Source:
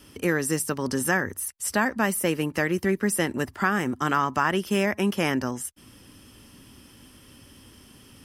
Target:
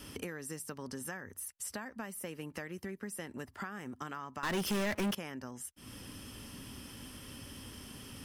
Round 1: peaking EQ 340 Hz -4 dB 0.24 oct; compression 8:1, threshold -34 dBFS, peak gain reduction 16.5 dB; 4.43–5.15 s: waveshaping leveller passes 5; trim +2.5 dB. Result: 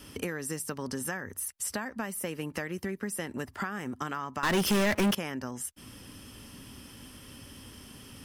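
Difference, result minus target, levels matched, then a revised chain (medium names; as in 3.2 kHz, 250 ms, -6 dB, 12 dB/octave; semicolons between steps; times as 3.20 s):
compression: peak gain reduction -7.5 dB
peaking EQ 340 Hz -4 dB 0.24 oct; compression 8:1, threshold -42.5 dBFS, peak gain reduction 24 dB; 4.43–5.15 s: waveshaping leveller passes 5; trim +2.5 dB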